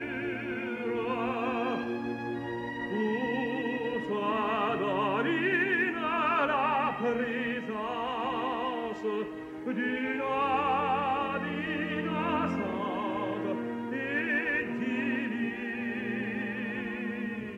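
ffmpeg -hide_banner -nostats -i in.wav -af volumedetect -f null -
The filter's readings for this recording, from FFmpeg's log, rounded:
mean_volume: -30.9 dB
max_volume: -15.8 dB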